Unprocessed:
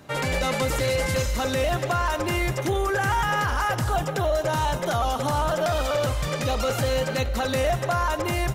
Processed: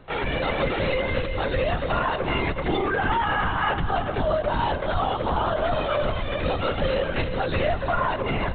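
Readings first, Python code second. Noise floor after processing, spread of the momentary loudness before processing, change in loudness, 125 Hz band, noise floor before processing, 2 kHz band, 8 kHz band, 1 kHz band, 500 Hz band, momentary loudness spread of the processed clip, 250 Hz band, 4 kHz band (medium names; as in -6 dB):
-29 dBFS, 2 LU, -0.5 dB, -2.5 dB, -30 dBFS, +0.5 dB, under -40 dB, +0.5 dB, 0.0 dB, 3 LU, +1.0 dB, -1.5 dB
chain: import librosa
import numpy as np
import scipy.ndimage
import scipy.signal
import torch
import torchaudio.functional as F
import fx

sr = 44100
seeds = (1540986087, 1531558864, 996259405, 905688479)

y = scipy.signal.sosfilt(scipy.signal.butter(2, 61.0, 'highpass', fs=sr, output='sos'), x)
y = y + 10.0 ** (-12.5 / 20.0) * np.pad(y, (int(375 * sr / 1000.0), 0))[:len(y)]
y = fx.lpc_vocoder(y, sr, seeds[0], excitation='whisper', order=16)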